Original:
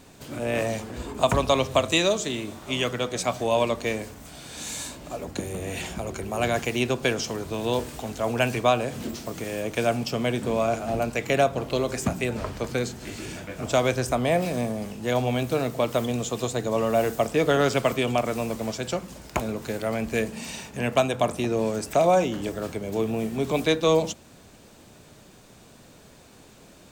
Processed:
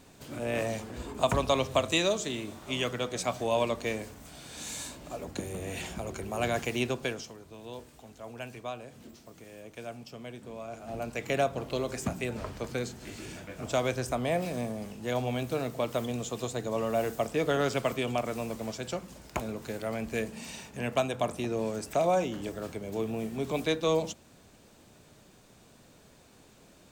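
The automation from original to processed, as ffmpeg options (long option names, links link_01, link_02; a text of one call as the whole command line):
ffmpeg -i in.wav -af "volume=6dB,afade=type=out:start_time=6.82:duration=0.53:silence=0.237137,afade=type=in:start_time=10.68:duration=0.61:silence=0.281838" out.wav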